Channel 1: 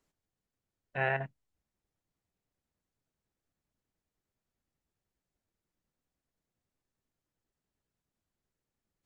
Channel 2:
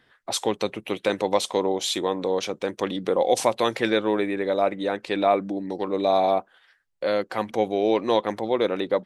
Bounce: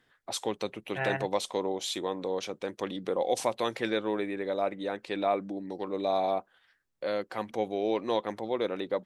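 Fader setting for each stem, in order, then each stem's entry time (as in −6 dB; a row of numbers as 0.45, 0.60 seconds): −1.0, −7.5 decibels; 0.00, 0.00 seconds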